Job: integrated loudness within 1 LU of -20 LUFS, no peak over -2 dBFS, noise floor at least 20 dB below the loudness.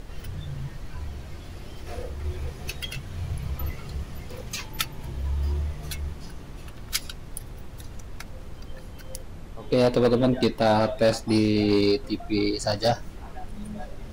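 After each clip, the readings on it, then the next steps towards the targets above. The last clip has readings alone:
clipped 0.6%; flat tops at -14.0 dBFS; noise floor -41 dBFS; noise floor target -47 dBFS; loudness -26.5 LUFS; peak -14.0 dBFS; loudness target -20.0 LUFS
-> clip repair -14 dBFS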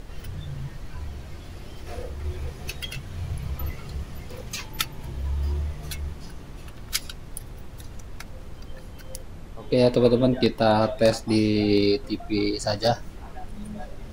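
clipped 0.0%; noise floor -41 dBFS; noise floor target -46 dBFS
-> noise print and reduce 6 dB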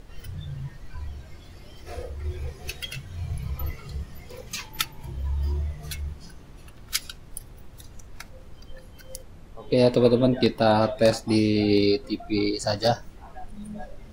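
noise floor -46 dBFS; loudness -25.5 LUFS; peak -5.0 dBFS; loudness target -20.0 LUFS
-> gain +5.5 dB; limiter -2 dBFS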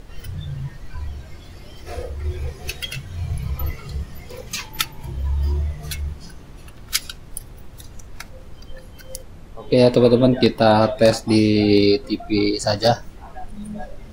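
loudness -20.0 LUFS; peak -2.0 dBFS; noise floor -41 dBFS

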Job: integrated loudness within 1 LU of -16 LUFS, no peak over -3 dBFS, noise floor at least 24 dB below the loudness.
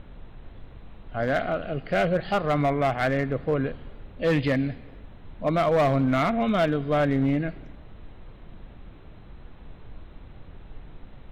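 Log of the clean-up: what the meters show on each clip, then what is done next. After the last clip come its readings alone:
clipped 1.2%; flat tops at -17.0 dBFS; noise floor -46 dBFS; noise floor target -49 dBFS; loudness -25.0 LUFS; peak -17.0 dBFS; loudness target -16.0 LUFS
-> clip repair -17 dBFS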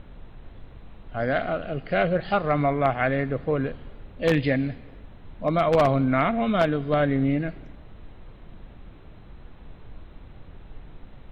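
clipped 0.0%; noise floor -46 dBFS; noise floor target -48 dBFS
-> noise print and reduce 6 dB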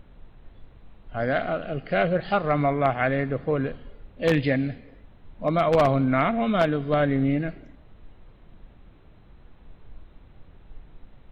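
noise floor -52 dBFS; loudness -24.0 LUFS; peak -8.0 dBFS; loudness target -16.0 LUFS
-> gain +8 dB; limiter -3 dBFS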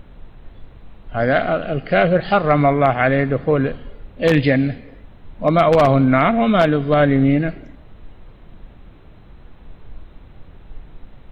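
loudness -16.5 LUFS; peak -3.0 dBFS; noise floor -44 dBFS

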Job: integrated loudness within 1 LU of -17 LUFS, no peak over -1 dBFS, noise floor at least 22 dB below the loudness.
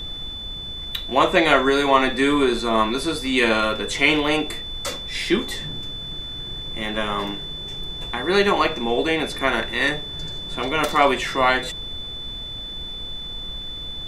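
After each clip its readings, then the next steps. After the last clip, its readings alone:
steady tone 3500 Hz; tone level -31 dBFS; noise floor -33 dBFS; noise floor target -44 dBFS; loudness -22.0 LUFS; peak -2.0 dBFS; loudness target -17.0 LUFS
-> notch 3500 Hz, Q 30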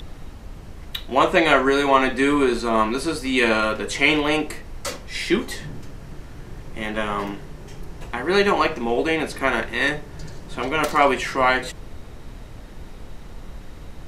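steady tone none; noise floor -39 dBFS; noise floor target -43 dBFS
-> noise print and reduce 6 dB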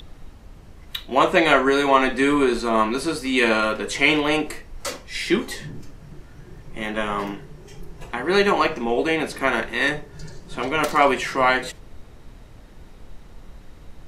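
noise floor -45 dBFS; loudness -21.0 LUFS; peak -2.0 dBFS; loudness target -17.0 LUFS
-> gain +4 dB; limiter -1 dBFS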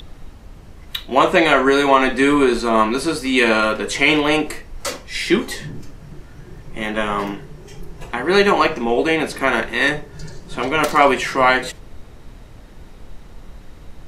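loudness -17.5 LUFS; peak -1.0 dBFS; noise floor -41 dBFS

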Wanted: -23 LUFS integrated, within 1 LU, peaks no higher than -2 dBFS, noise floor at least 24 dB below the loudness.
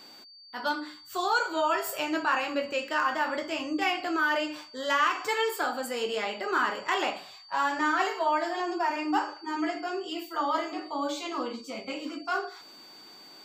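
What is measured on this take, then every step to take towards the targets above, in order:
steady tone 4600 Hz; tone level -49 dBFS; loudness -29.5 LUFS; peak -13.0 dBFS; loudness target -23.0 LUFS
-> notch 4600 Hz, Q 30; gain +6.5 dB

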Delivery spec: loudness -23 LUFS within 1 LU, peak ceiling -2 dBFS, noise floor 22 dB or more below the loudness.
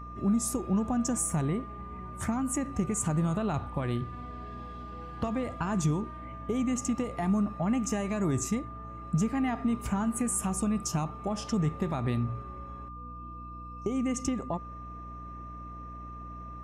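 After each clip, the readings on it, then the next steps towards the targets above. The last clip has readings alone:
hum 60 Hz; harmonics up to 300 Hz; hum level -43 dBFS; steady tone 1200 Hz; tone level -43 dBFS; loudness -31.0 LUFS; peak -17.0 dBFS; loudness target -23.0 LUFS
-> notches 60/120/180/240/300 Hz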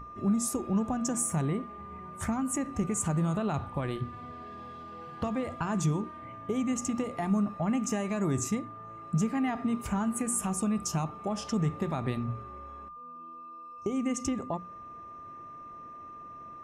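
hum none; steady tone 1200 Hz; tone level -43 dBFS
-> notch 1200 Hz, Q 30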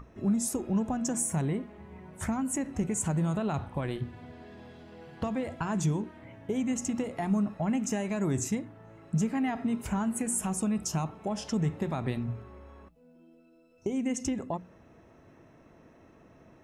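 steady tone none; loudness -31.5 LUFS; peak -17.5 dBFS; loudness target -23.0 LUFS
-> gain +8.5 dB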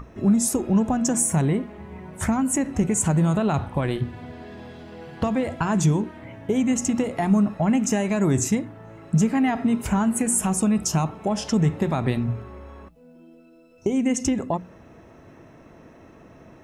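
loudness -23.0 LUFS; peak -9.0 dBFS; noise floor -50 dBFS

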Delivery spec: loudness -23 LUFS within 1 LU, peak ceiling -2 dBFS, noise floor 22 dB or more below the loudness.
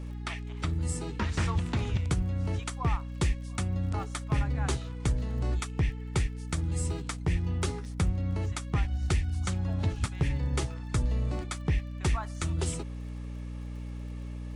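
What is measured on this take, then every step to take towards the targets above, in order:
ticks 28/s; hum 60 Hz; harmonics up to 300 Hz; hum level -35 dBFS; loudness -32.0 LUFS; peak -17.5 dBFS; loudness target -23.0 LUFS
-> de-click; de-hum 60 Hz, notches 5; gain +9 dB

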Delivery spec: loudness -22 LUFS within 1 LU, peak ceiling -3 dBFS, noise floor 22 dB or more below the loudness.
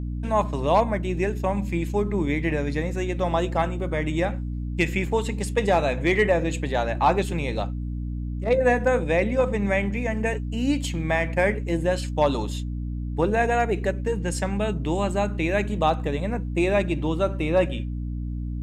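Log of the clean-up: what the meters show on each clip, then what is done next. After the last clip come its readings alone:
hum 60 Hz; harmonics up to 300 Hz; hum level -27 dBFS; loudness -24.5 LUFS; peak -9.0 dBFS; loudness target -22.0 LUFS
-> notches 60/120/180/240/300 Hz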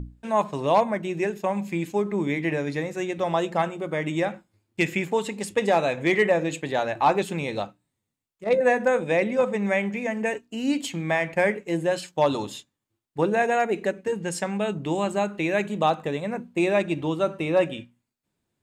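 hum none; loudness -25.0 LUFS; peak -10.5 dBFS; loudness target -22.0 LUFS
-> gain +3 dB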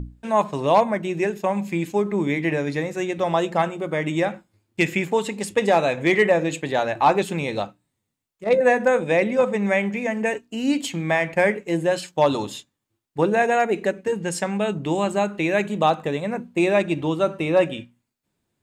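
loudness -22.0 LUFS; peak -7.5 dBFS; noise floor -78 dBFS

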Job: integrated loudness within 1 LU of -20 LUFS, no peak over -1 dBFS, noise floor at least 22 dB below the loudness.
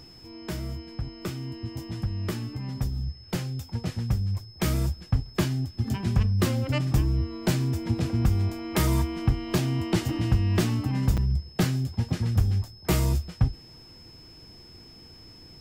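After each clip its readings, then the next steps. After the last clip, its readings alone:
dropouts 1; longest dropout 6.1 ms; steady tone 5200 Hz; tone level -49 dBFS; loudness -27.5 LUFS; peak -11.5 dBFS; loudness target -20.0 LUFS
-> interpolate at 11.17, 6.1 ms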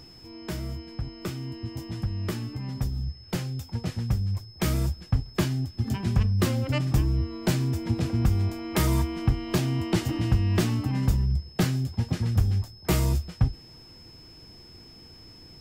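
dropouts 0; steady tone 5200 Hz; tone level -49 dBFS
-> notch 5200 Hz, Q 30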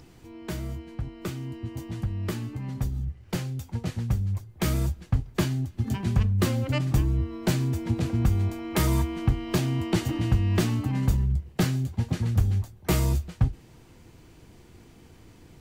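steady tone none; loudness -27.5 LUFS; peak -12.0 dBFS; loudness target -20.0 LUFS
-> gain +7.5 dB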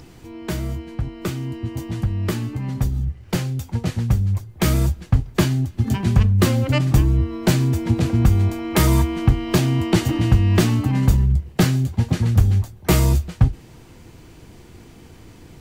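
loudness -20.0 LUFS; peak -4.5 dBFS; noise floor -45 dBFS

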